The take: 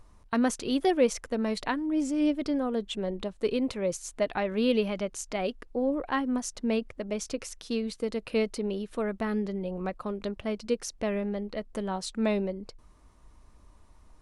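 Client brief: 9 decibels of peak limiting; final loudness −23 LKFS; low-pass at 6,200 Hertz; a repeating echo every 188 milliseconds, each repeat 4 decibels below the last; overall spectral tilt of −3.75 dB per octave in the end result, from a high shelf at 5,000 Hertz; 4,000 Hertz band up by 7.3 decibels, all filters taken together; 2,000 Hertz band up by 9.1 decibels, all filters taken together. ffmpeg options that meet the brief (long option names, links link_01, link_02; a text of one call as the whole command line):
ffmpeg -i in.wav -af "lowpass=6200,equalizer=frequency=2000:width_type=o:gain=9,equalizer=frequency=4000:width_type=o:gain=3.5,highshelf=frequency=5000:gain=7.5,alimiter=limit=-17dB:level=0:latency=1,aecho=1:1:188|376|564|752|940|1128|1316|1504|1692:0.631|0.398|0.25|0.158|0.0994|0.0626|0.0394|0.0249|0.0157,volume=4.5dB" out.wav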